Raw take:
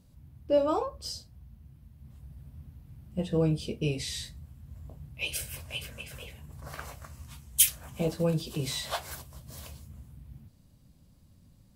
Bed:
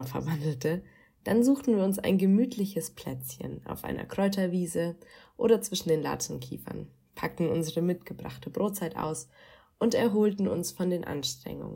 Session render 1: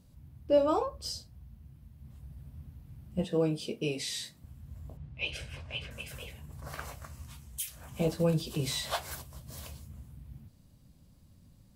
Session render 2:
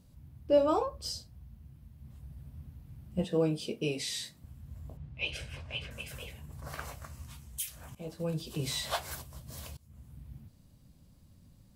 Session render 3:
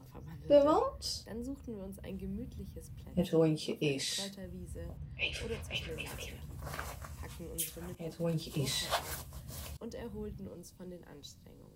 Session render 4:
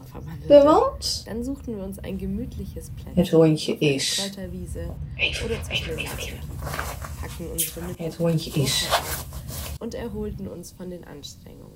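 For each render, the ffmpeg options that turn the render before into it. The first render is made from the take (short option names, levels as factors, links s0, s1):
-filter_complex "[0:a]asettb=1/sr,asplit=3[s0][s1][s2];[s0]atrim=end=3.244[s3];[s1]atrim=start=3.24:end=4.44,asetpts=PTS-STARTPTS,afade=t=in:d=0.004:c=qsin,afade=t=out:st=1.196:d=0.004:c=qsin,highpass=220[s4];[s2]atrim=start=4.436[s5];[s3][s4]acrossfade=d=0.004:c1=hsin:c2=qsin[s6];[s6][s5]acrossfade=d=0.004:c1=qsin:c2=hsin,asettb=1/sr,asplit=3[s7][s8][s9];[s7]atrim=end=4.974[s10];[s8]atrim=start=4.97:end=5.91,asetpts=PTS-STARTPTS,afade=t=in:d=0.004:c=qsin,afade=t=out:st=0.936:d=0.004:c=qsin,lowpass=3600[s11];[s9]atrim=start=5.906[s12];[s10][s11]acrossfade=d=0.004:c1=hsin:c2=qsin[s13];[s13][s12]acrossfade=d=0.004:c1=qsin:c2=hsin,asettb=1/sr,asplit=3[s14][s15][s16];[s14]atrim=end=7.314[s17];[s15]atrim=start=7.31:end=7.92,asetpts=PTS-STARTPTS,afade=t=in:d=0.004:c=qsin,afade=t=out:st=0.606:d=0.004:c=qsin,acompressor=threshold=0.00562:ratio=2:attack=3.2:release=140:knee=1:detection=peak[s18];[s16]atrim=start=7.916[s19];[s17][s18]acrossfade=d=0.004:c1=hsin:c2=qsin[s20];[s20][s19]acrossfade=d=0.004:c1=qsin:c2=hsin"
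-filter_complex "[0:a]asplit=3[s0][s1][s2];[s0]atrim=end=7.95,asetpts=PTS-STARTPTS,afade=t=out:st=7.946:d=0.004:c=hsin:silence=0.125893[s3];[s1]atrim=start=7.95:end=9.77,asetpts=PTS-STARTPTS,afade=t=in:d=0.89:silence=0.125893,afade=t=out:st=1.816:d=0.004:c=hsin:silence=0.0749894[s4];[s2]atrim=start=9.77,asetpts=PTS-STARTPTS,afade=t=in:d=0.41:silence=0.0749894[s5];[s3][s4][s5]concat=n=3:v=0:a=1"
-filter_complex "[1:a]volume=0.112[s0];[0:a][s0]amix=inputs=2:normalize=0"
-af "volume=3.98"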